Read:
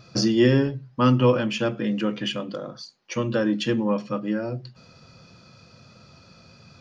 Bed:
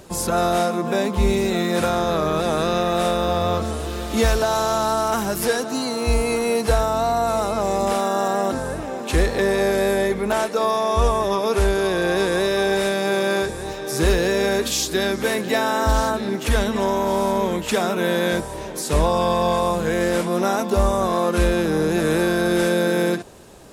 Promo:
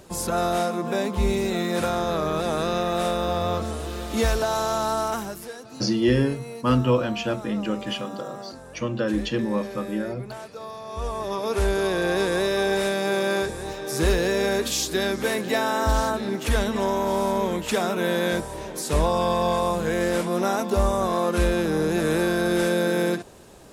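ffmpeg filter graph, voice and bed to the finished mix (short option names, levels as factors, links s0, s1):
-filter_complex "[0:a]adelay=5650,volume=0.794[s0];[1:a]volume=3.16,afade=t=out:st=5.03:d=0.42:silence=0.223872,afade=t=in:st=10.85:d=0.92:silence=0.199526[s1];[s0][s1]amix=inputs=2:normalize=0"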